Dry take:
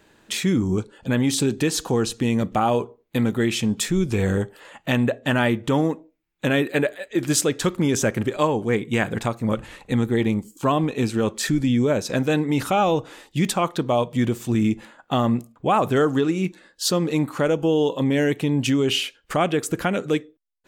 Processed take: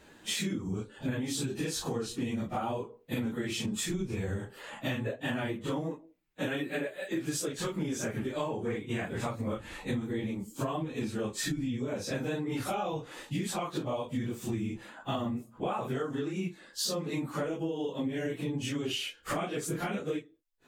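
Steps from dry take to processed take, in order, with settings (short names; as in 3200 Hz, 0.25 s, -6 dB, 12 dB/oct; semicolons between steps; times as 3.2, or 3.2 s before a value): phase scrambler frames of 0.1 s; compressor 12:1, threshold -30 dBFS, peak gain reduction 17 dB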